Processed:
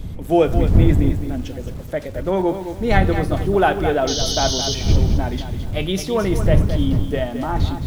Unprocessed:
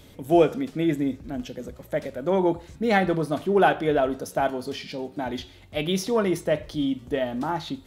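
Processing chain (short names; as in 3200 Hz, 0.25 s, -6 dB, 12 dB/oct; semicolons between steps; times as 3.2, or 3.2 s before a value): wind noise 100 Hz -23 dBFS; painted sound noise, 4.07–4.75, 2900–6500 Hz -27 dBFS; lo-fi delay 0.216 s, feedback 35%, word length 7-bit, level -9 dB; gain +2.5 dB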